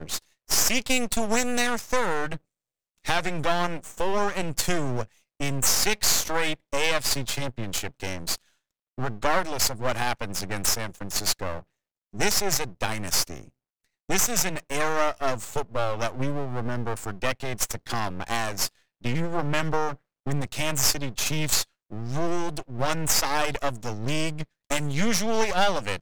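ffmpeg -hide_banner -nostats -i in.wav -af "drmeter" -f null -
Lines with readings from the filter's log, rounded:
Channel 1: DR: 14.7
Overall DR: 14.7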